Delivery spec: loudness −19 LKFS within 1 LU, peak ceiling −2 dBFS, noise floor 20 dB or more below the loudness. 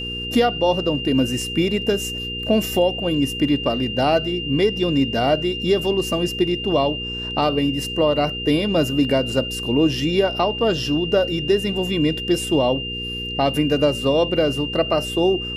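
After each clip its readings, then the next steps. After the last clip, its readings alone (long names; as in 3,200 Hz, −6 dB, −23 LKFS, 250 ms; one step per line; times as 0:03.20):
mains hum 60 Hz; hum harmonics up to 480 Hz; level of the hum −31 dBFS; interfering tone 2,800 Hz; level of the tone −27 dBFS; integrated loudness −20.0 LKFS; sample peak −6.5 dBFS; target loudness −19.0 LKFS
→ hum removal 60 Hz, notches 8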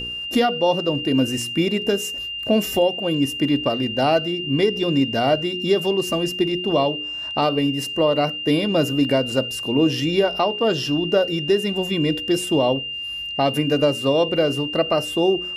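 mains hum none found; interfering tone 2,800 Hz; level of the tone −27 dBFS
→ notch filter 2,800 Hz, Q 30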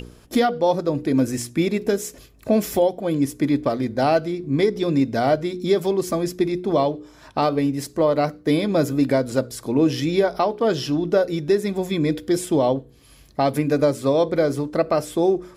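interfering tone none found; integrated loudness −21.5 LKFS; sample peak −7.5 dBFS; target loudness −19.0 LKFS
→ level +2.5 dB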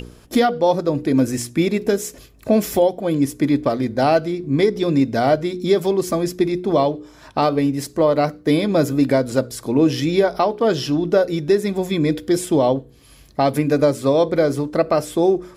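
integrated loudness −19.0 LKFS; sample peak −5.0 dBFS; background noise floor −47 dBFS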